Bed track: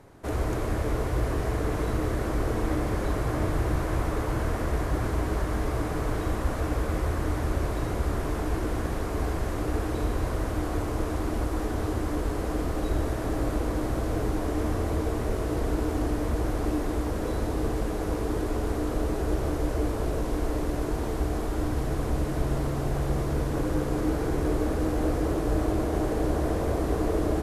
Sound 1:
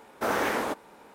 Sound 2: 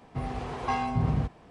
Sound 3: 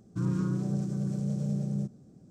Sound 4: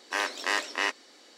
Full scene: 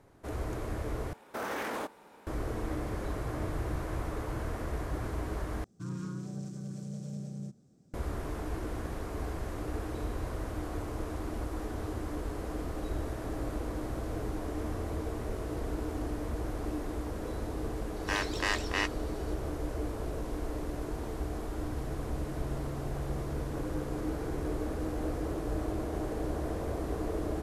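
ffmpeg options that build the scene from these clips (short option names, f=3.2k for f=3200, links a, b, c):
-filter_complex "[0:a]volume=-8dB[a];[1:a]alimiter=limit=-23.5dB:level=0:latency=1:release=18[b];[3:a]tiltshelf=f=1.1k:g=-4[c];[a]asplit=3[d][e][f];[d]atrim=end=1.134[g];[b]atrim=end=1.14,asetpts=PTS-STARTPTS,volume=-4dB[h];[e]atrim=start=2.266:end=5.644[i];[c]atrim=end=2.3,asetpts=PTS-STARTPTS,volume=-5.5dB[j];[f]atrim=start=7.936[k];[4:a]atrim=end=1.37,asetpts=PTS-STARTPTS,volume=-3.5dB,afade=t=in:d=0.004:c=hsin,afade=t=out:st=1.366:d=0.004:c=hsin,adelay=792036S[l];[g][h]acrossfade=d=0.004:c1=hsin:c2=hsin[m];[m][i]acrossfade=d=0.004:c1=hsin:c2=hsin[n];[n][j]acrossfade=d=0.004:c1=hsin:c2=hsin[o];[o][k]acrossfade=d=0.004:c1=hsin:c2=hsin[p];[p][l]amix=inputs=2:normalize=0"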